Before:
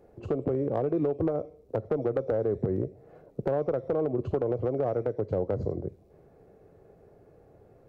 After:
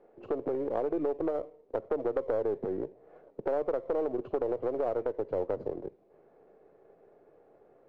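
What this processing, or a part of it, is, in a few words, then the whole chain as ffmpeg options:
crystal radio: -af "highpass=320,lowpass=2500,aeval=exprs='if(lt(val(0),0),0.708*val(0),val(0))':channel_layout=same"

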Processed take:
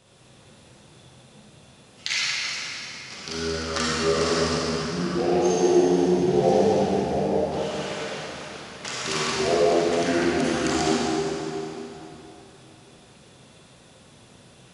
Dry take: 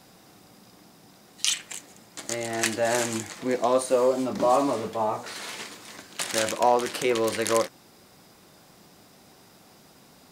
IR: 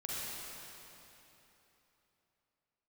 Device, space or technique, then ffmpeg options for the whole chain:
slowed and reverbed: -filter_complex "[0:a]asetrate=30870,aresample=44100[link_01];[1:a]atrim=start_sample=2205[link_02];[link_01][link_02]afir=irnorm=-1:irlink=0"

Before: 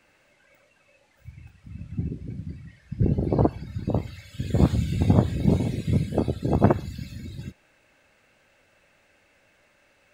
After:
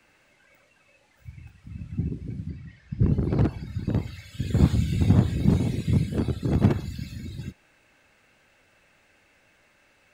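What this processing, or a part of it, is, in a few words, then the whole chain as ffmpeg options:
one-band saturation: -filter_complex "[0:a]acrossover=split=260|2600[link_01][link_02][link_03];[link_02]asoftclip=type=tanh:threshold=-27.5dB[link_04];[link_01][link_04][link_03]amix=inputs=3:normalize=0,asettb=1/sr,asplit=3[link_05][link_06][link_07];[link_05]atrim=end=2.494[link_08];[link_06]atrim=start=2.49:end=3.04,asetpts=PTS-STARTPTS,afade=type=in:duration=0.004:curve=qsin,afade=type=out:start_time=0.546:duration=0.004:curve=qsin,lowpass=6500[link_09];[link_07]atrim=start=3.036[link_10];[link_08][link_09]acrossfade=duration=0.004:curve1=hsin:curve2=qsin[link_11];[link_11][link_10]acrossfade=duration=0.004:curve1=qsin:curve2=hsin,equalizer=frequency=570:width_type=o:width=0.42:gain=-4,volume=1dB"

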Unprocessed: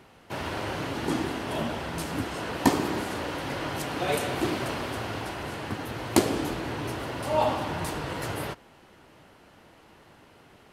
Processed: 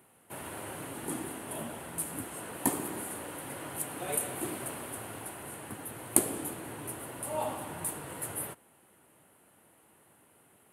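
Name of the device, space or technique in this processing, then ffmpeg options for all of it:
budget condenser microphone: -af "highpass=100,highshelf=frequency=7300:width_type=q:width=3:gain=12.5,volume=-9.5dB"

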